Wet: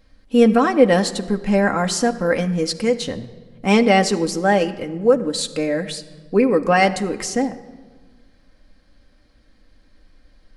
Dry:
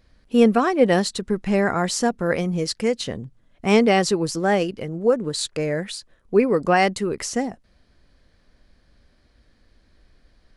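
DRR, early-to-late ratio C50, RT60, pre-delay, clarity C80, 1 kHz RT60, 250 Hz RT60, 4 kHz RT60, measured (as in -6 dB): 4.5 dB, 14.5 dB, 1.4 s, 4 ms, 15.5 dB, 1.3 s, 1.9 s, 1.0 s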